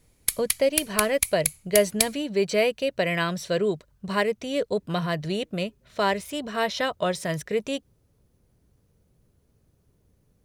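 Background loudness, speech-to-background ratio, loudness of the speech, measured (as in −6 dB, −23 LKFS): −26.5 LKFS, 0.0 dB, −26.5 LKFS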